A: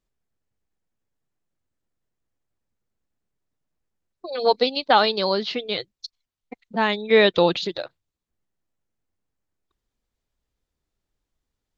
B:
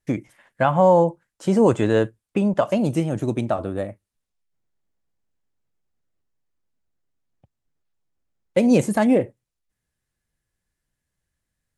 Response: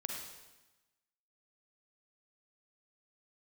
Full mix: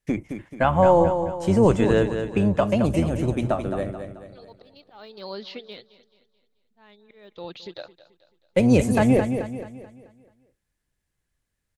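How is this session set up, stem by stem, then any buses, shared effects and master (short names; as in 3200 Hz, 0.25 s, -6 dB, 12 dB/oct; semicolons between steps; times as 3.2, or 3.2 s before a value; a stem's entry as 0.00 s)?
5.49 s -7.5 dB -> 5.86 s -16 dB -> 7.18 s -16 dB -> 7.8 s -6.5 dB, 0.00 s, no send, echo send -16.5 dB, de-esser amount 70%; auto swell 0.717 s
-1.5 dB, 0.00 s, no send, echo send -8 dB, octaver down 1 oct, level -5 dB; bell 2400 Hz +2.5 dB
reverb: off
echo: feedback echo 0.217 s, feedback 42%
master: dry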